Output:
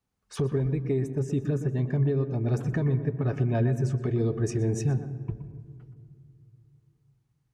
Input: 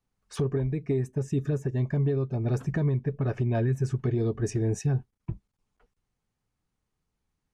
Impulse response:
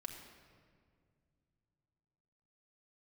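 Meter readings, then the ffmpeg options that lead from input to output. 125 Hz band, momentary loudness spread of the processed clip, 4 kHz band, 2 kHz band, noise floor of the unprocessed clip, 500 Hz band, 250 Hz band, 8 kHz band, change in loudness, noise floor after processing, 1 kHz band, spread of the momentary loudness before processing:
+1.0 dB, 11 LU, n/a, +0.5 dB, -83 dBFS, +0.5 dB, +1.0 dB, 0.0 dB, +0.5 dB, -74 dBFS, +0.5 dB, 5 LU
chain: -filter_complex "[0:a]highpass=42,asplit=2[a][b];[1:a]atrim=start_sample=2205,highshelf=f=2.1k:g=-11.5,adelay=121[c];[b][c]afir=irnorm=-1:irlink=0,volume=-4.5dB[d];[a][d]amix=inputs=2:normalize=0"

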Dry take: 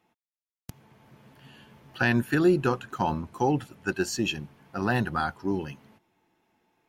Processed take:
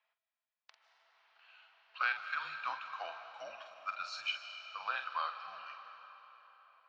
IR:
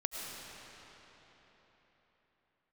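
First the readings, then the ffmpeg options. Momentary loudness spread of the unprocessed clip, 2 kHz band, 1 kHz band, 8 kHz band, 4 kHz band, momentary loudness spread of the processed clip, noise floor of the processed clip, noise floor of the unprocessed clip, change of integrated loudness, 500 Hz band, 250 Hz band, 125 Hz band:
10 LU, -7.5 dB, -8.0 dB, -21.5 dB, -5.5 dB, 18 LU, under -85 dBFS, under -85 dBFS, -12.0 dB, -23.5 dB, under -40 dB, under -40 dB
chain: -filter_complex "[0:a]asuperpass=centerf=2300:order=8:qfactor=0.62,afreqshift=-210,asplit=2[a][b];[b]aemphasis=mode=production:type=50fm[c];[1:a]atrim=start_sample=2205,adelay=47[d];[c][d]afir=irnorm=-1:irlink=0,volume=-9.5dB[e];[a][e]amix=inputs=2:normalize=0,volume=-6dB"

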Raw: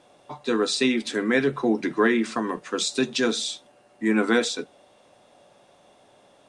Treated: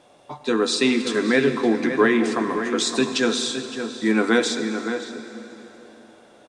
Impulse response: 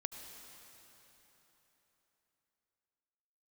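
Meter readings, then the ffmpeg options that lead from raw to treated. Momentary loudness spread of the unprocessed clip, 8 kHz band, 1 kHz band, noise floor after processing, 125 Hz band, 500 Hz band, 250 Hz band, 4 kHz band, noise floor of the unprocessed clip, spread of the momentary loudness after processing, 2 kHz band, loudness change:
11 LU, +2.5 dB, +3.5 dB, -52 dBFS, +3.0 dB, +3.5 dB, +3.0 dB, +3.0 dB, -58 dBFS, 15 LU, +3.0 dB, +2.5 dB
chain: -filter_complex "[0:a]asplit=2[a][b];[b]adelay=565.6,volume=-8dB,highshelf=f=4k:g=-12.7[c];[a][c]amix=inputs=2:normalize=0,asplit=2[d][e];[1:a]atrim=start_sample=2205[f];[e][f]afir=irnorm=-1:irlink=0,volume=4dB[g];[d][g]amix=inputs=2:normalize=0,volume=-4.5dB"

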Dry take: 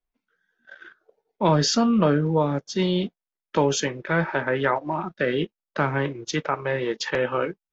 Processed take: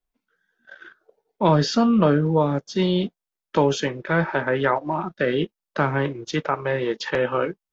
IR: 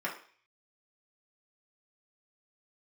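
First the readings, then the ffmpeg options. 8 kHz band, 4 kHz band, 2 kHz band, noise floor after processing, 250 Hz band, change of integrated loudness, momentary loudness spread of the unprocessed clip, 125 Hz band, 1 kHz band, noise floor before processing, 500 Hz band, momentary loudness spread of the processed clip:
n/a, -1.5 dB, +0.5 dB, under -85 dBFS, +2.0 dB, +1.5 dB, 8 LU, +2.0 dB, +2.0 dB, under -85 dBFS, +2.0 dB, 8 LU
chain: -filter_complex "[0:a]acrossover=split=4500[a][b];[b]acompressor=threshold=-41dB:ratio=4:attack=1:release=60[c];[a][c]amix=inputs=2:normalize=0,equalizer=f=2.2k:t=o:w=0.77:g=-2.5,volume=2dB"

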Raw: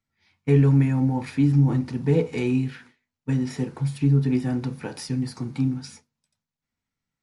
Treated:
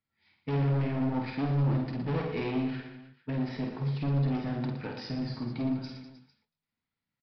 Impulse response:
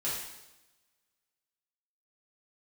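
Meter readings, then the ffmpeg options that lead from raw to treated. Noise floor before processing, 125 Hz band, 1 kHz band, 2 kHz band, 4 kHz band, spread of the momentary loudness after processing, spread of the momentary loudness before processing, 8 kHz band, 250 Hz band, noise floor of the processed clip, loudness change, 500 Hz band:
under -85 dBFS, -8.5 dB, -0.5 dB, -4.0 dB, -3.5 dB, 10 LU, 13 LU, under -20 dB, -8.0 dB, under -85 dBFS, -8.0 dB, -7.5 dB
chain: -af "lowshelf=f=68:g=-10,aresample=11025,asoftclip=type=hard:threshold=-24.5dB,aresample=44100,aecho=1:1:50|115|199.5|309.4|452.2:0.631|0.398|0.251|0.158|0.1,volume=-4.5dB"

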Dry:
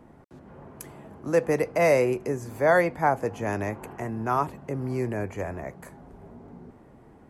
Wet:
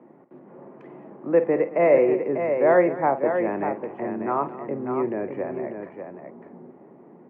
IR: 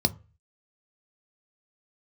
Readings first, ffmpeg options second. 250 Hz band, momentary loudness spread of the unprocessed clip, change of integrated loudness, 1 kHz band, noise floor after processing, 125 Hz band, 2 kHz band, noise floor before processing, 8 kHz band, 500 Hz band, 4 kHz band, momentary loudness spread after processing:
+4.0 dB, 18 LU, +3.0 dB, +1.0 dB, -50 dBFS, -6.5 dB, -2.5 dB, -53 dBFS, under -35 dB, +4.0 dB, under -10 dB, 18 LU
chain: -filter_complex "[0:a]highpass=f=170:w=0.5412,highpass=f=170:w=1.3066,equalizer=f=350:t=q:w=4:g=6,equalizer=f=550:t=q:w=4:g=4,equalizer=f=1.5k:t=q:w=4:g=-6,lowpass=f=2.2k:w=0.5412,lowpass=f=2.2k:w=1.3066,asplit=2[a][b];[b]aecho=0:1:50|221|595:0.224|0.15|0.447[c];[a][c]amix=inputs=2:normalize=0"

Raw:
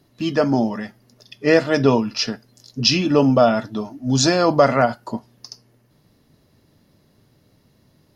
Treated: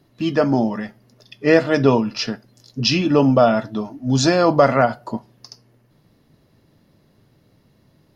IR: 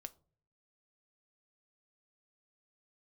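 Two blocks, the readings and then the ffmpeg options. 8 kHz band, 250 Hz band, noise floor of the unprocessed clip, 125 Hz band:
-3.5 dB, +1.0 dB, -60 dBFS, +1.5 dB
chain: -filter_complex "[0:a]asplit=2[a][b];[1:a]atrim=start_sample=2205,lowpass=4.5k[c];[b][c]afir=irnorm=-1:irlink=0,volume=1dB[d];[a][d]amix=inputs=2:normalize=0,volume=-3dB"

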